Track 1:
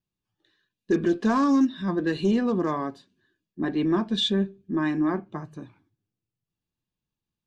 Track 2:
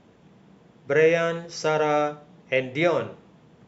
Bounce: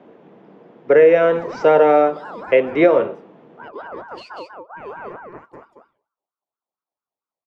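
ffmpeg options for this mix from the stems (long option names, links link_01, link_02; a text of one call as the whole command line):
ffmpeg -i stem1.wav -i stem2.wav -filter_complex "[0:a]alimiter=limit=-20.5dB:level=0:latency=1:release=115,aeval=exprs='val(0)*sin(2*PI*990*n/s+990*0.3/4.4*sin(2*PI*4.4*n/s))':channel_layout=same,volume=-11.5dB,asplit=2[link_01][link_02];[link_02]volume=-3.5dB[link_03];[1:a]highpass=110,acrossover=split=360 3400:gain=0.224 1 0.0891[link_04][link_05][link_06];[link_04][link_05][link_06]amix=inputs=3:normalize=0,volume=3dB,asplit=2[link_07][link_08];[link_08]apad=whole_len=329019[link_09];[link_01][link_09]sidechaincompress=threshold=-26dB:ratio=8:attack=16:release=164[link_10];[link_03]aecho=0:1:191:1[link_11];[link_10][link_07][link_11]amix=inputs=3:normalize=0,equalizer=frequency=300:width_type=o:width=3:gain=13.5,alimiter=limit=-3.5dB:level=0:latency=1:release=192" out.wav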